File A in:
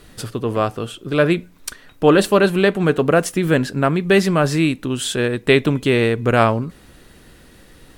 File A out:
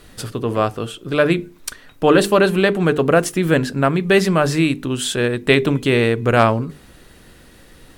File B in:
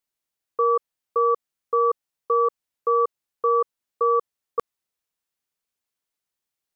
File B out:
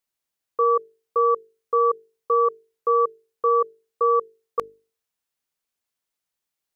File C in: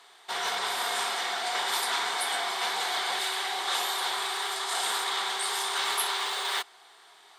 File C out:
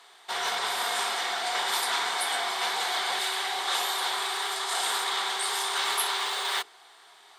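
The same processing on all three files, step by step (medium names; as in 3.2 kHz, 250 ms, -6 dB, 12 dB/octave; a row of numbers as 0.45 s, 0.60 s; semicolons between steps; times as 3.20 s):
hum notches 50/100/150/200/250/300/350/400/450 Hz; hard clipper -2.5 dBFS; trim +1 dB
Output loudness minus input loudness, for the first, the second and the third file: +0.5 LU, +1.0 LU, +1.0 LU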